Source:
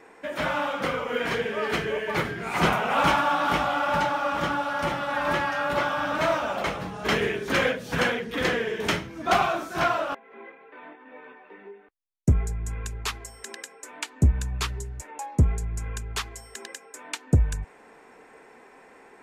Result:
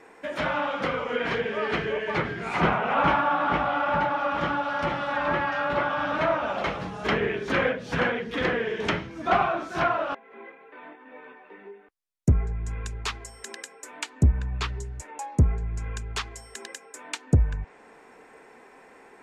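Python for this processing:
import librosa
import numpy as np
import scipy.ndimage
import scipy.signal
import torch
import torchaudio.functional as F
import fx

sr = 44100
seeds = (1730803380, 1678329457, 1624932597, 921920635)

y = fx.env_lowpass_down(x, sr, base_hz=2300.0, full_db=-20.5)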